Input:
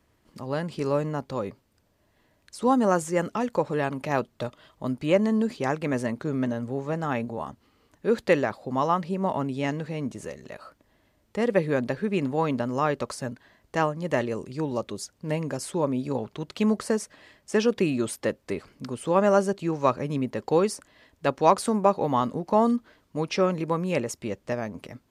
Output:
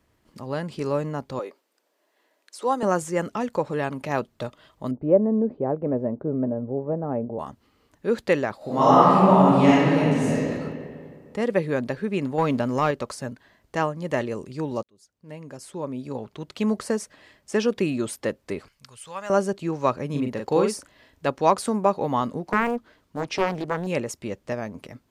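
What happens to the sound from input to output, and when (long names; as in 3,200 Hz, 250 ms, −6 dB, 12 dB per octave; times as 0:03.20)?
0:01.39–0:02.83: high-pass filter 340 Hz 24 dB per octave
0:04.91–0:07.39: low-pass with resonance 580 Hz, resonance Q 1.6
0:08.57–0:10.49: thrown reverb, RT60 2.2 s, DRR −10.5 dB
0:12.38–0:12.91: leveller curve on the samples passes 1
0:14.83–0:16.80: fade in
0:18.68–0:19.30: guitar amp tone stack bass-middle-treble 10-0-10
0:20.10–0:21.27: double-tracking delay 41 ms −4 dB
0:22.46–0:23.87: highs frequency-modulated by the lows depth 0.91 ms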